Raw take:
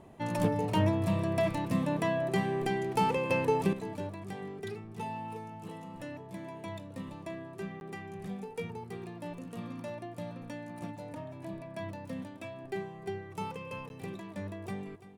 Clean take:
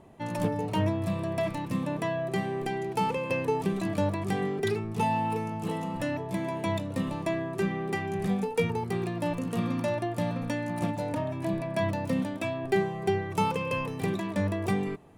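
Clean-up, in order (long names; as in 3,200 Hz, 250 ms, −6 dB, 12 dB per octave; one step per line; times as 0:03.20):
repair the gap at 0:07.80/0:13.89, 11 ms
echo removal 339 ms −14.5 dB
level 0 dB, from 0:03.73 +11.5 dB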